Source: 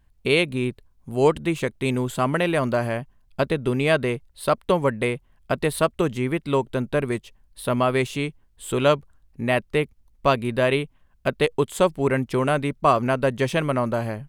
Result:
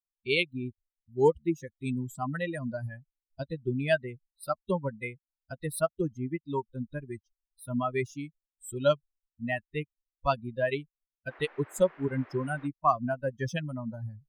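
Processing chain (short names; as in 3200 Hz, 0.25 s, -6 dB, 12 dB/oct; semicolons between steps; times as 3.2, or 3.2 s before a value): per-bin expansion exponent 3; 11.29–12.66 band noise 300–2000 Hz -53 dBFS; gain -1 dB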